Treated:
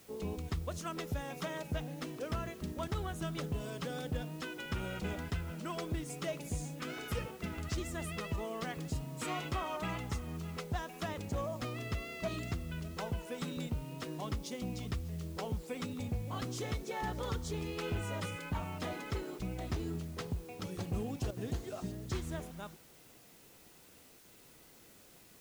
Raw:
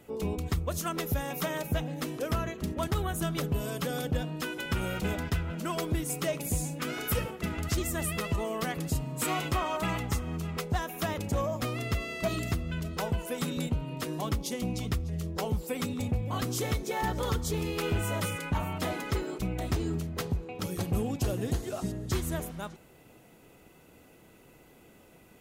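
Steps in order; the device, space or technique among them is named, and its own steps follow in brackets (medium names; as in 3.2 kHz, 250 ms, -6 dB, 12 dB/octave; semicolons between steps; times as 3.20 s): worn cassette (low-pass 7.2 kHz 12 dB/octave; wow and flutter 29 cents; level dips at 21.31/24.19 s, 55 ms -10 dB; white noise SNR 22 dB); trim -7 dB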